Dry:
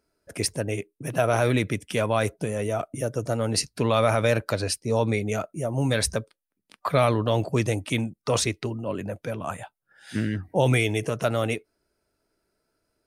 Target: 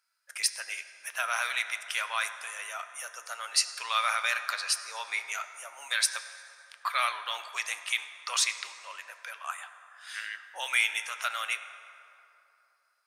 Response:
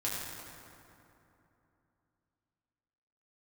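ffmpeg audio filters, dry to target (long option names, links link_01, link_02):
-filter_complex "[0:a]highpass=frequency=1200:width=0.5412,highpass=frequency=1200:width=1.3066,asplit=2[link_01][link_02];[1:a]atrim=start_sample=2205,lowpass=7600[link_03];[link_02][link_03]afir=irnorm=-1:irlink=0,volume=-11.5dB[link_04];[link_01][link_04]amix=inputs=2:normalize=0"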